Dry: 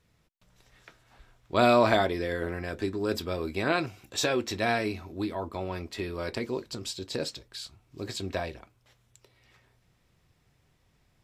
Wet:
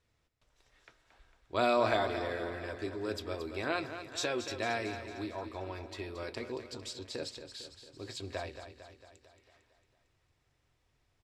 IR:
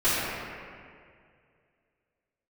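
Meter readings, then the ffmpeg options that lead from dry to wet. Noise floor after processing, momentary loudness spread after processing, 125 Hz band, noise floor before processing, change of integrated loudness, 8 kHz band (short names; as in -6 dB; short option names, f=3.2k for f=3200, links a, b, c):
-76 dBFS, 16 LU, -8.5 dB, -69 dBFS, -6.5 dB, -7.0 dB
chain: -filter_complex "[0:a]lowpass=9.6k,equalizer=f=180:t=o:w=0.58:g=-11,bandreject=f=60.34:t=h:w=4,bandreject=f=120.68:t=h:w=4,bandreject=f=181.02:t=h:w=4,asplit=2[a][b];[b]aecho=0:1:226|452|678|904|1130|1356|1582:0.316|0.18|0.103|0.0586|0.0334|0.019|0.0108[c];[a][c]amix=inputs=2:normalize=0,volume=-6.5dB"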